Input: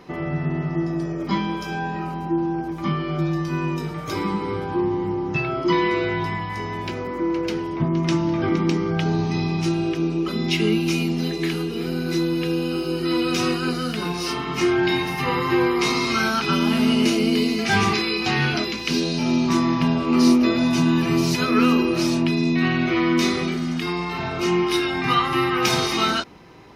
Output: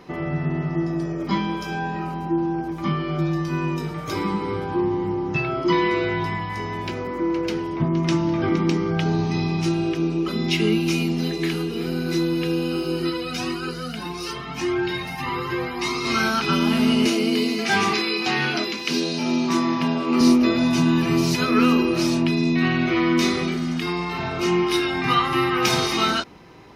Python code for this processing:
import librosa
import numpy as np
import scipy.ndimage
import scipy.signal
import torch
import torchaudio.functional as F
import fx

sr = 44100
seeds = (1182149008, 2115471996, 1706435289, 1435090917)

y = fx.comb_cascade(x, sr, direction='rising', hz=1.7, at=(13.09, 16.04), fade=0.02)
y = fx.highpass(y, sr, hz=210.0, slope=12, at=(17.06, 20.21))